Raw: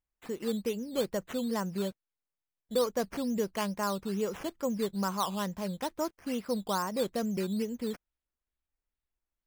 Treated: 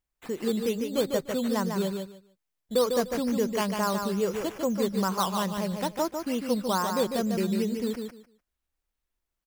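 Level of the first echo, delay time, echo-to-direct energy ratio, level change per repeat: −5.5 dB, 149 ms, −5.5 dB, −14.5 dB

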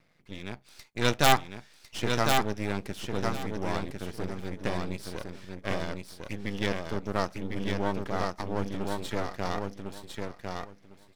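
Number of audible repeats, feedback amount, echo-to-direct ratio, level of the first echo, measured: 3, 18%, −4.0 dB, −4.0 dB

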